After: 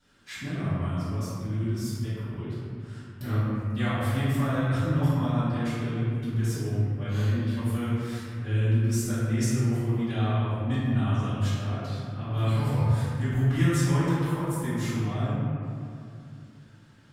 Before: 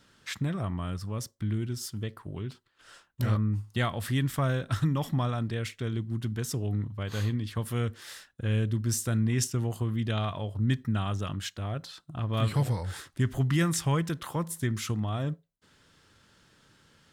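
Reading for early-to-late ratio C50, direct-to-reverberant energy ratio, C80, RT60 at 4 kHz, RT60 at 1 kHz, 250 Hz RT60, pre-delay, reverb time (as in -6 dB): -4.0 dB, -15.5 dB, -2.0 dB, 1.4 s, 2.4 s, 3.3 s, 3 ms, 2.5 s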